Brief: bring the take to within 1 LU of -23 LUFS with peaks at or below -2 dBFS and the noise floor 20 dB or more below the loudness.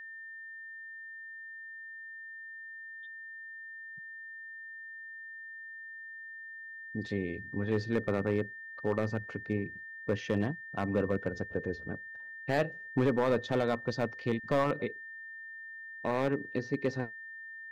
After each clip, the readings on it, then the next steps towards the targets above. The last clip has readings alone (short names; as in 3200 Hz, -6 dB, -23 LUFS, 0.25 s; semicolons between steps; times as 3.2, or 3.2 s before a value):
clipped 0.4%; flat tops at -21.0 dBFS; steady tone 1800 Hz; tone level -43 dBFS; loudness -35.5 LUFS; peak -21.0 dBFS; loudness target -23.0 LUFS
-> clip repair -21 dBFS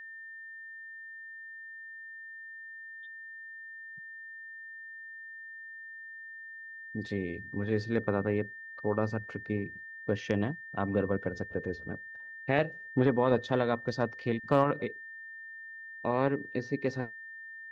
clipped 0.0%; steady tone 1800 Hz; tone level -43 dBFS
-> notch 1800 Hz, Q 30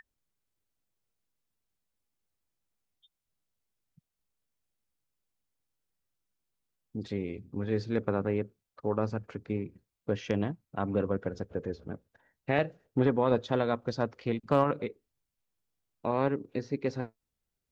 steady tone none; loudness -32.0 LUFS; peak -11.5 dBFS; loudness target -23.0 LUFS
-> gain +9 dB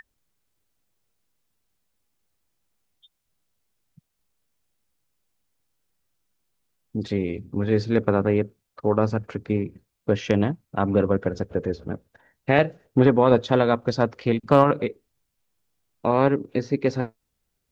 loudness -23.0 LUFS; peak -2.5 dBFS; noise floor -78 dBFS